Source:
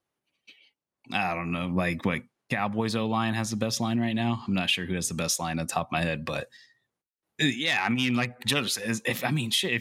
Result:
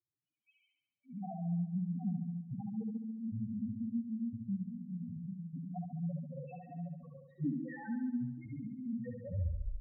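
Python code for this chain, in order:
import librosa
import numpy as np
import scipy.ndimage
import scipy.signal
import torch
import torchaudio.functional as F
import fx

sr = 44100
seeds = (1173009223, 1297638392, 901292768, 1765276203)

y = fx.tape_stop_end(x, sr, length_s=0.67)
y = fx.peak_eq(y, sr, hz=950.0, db=-6.5, octaves=2.1)
y = y + 10.0 ** (-9.0 / 20.0) * np.pad(y, (int(770 * sr / 1000.0), 0))[:len(y)]
y = fx.rider(y, sr, range_db=5, speed_s=0.5)
y = fx.env_lowpass_down(y, sr, base_hz=1800.0, full_db=-25.0)
y = fx.high_shelf(y, sr, hz=4000.0, db=-11.0)
y = fx.spec_topn(y, sr, count=1)
y = fx.room_flutter(y, sr, wall_m=12.0, rt60_s=0.84)
y = F.gain(torch.from_numpy(y), -2.5).numpy()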